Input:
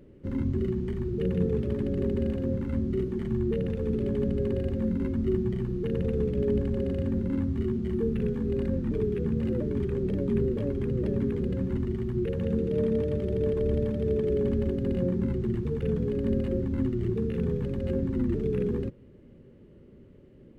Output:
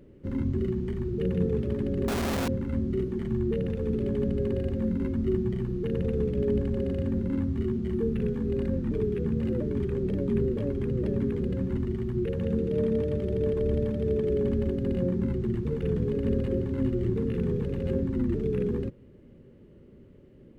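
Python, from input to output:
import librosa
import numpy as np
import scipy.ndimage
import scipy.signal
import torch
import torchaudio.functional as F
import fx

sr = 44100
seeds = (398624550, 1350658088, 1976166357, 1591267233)

y = fx.clip_1bit(x, sr, at=(2.08, 2.48))
y = fx.echo_single(y, sr, ms=424, db=-7.5, at=(15.25, 18.03))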